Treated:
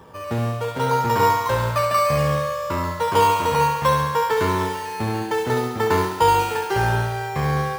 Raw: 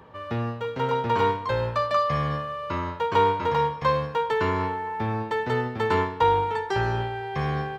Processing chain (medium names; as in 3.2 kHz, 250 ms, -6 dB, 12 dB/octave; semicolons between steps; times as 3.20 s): in parallel at -5 dB: decimation with a swept rate 10×, swing 60% 0.65 Hz; on the sum: thinning echo 70 ms, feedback 74%, high-pass 190 Hz, level -6 dB